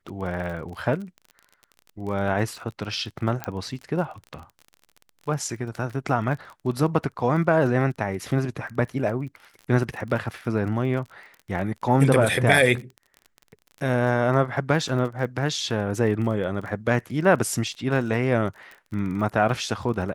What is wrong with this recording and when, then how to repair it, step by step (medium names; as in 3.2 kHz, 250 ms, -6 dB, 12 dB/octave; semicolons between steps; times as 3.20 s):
crackle 29 per s -33 dBFS
3.44 s: pop -12 dBFS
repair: de-click